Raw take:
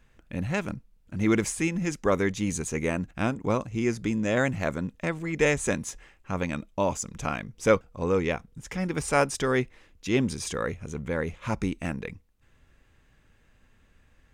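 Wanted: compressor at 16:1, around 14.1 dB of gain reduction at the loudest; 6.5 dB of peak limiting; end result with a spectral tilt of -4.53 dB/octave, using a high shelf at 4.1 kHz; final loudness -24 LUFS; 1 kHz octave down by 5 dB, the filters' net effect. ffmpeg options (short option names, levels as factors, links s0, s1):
-af "equalizer=f=1000:t=o:g=-7.5,highshelf=f=4100:g=5.5,acompressor=threshold=0.0251:ratio=16,volume=5.62,alimiter=limit=0.224:level=0:latency=1"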